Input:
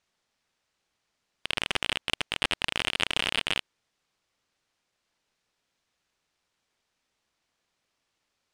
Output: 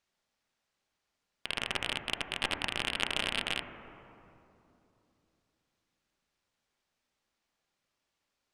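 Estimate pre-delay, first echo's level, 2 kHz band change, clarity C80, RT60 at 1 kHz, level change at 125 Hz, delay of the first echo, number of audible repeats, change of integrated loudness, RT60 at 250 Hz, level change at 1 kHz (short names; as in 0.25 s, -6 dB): 3 ms, none, -4.5 dB, 9.0 dB, 2.7 s, -3.5 dB, none, none, -4.5 dB, 3.7 s, -3.5 dB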